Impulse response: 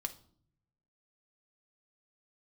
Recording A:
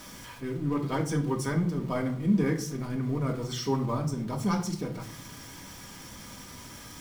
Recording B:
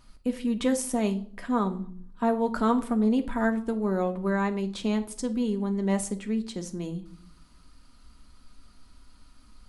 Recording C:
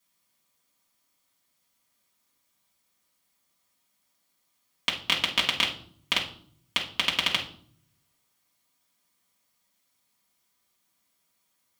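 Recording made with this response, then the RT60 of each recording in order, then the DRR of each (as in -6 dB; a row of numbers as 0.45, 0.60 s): B; 0.55, 0.60, 0.55 s; 0.0, 5.5, -4.5 dB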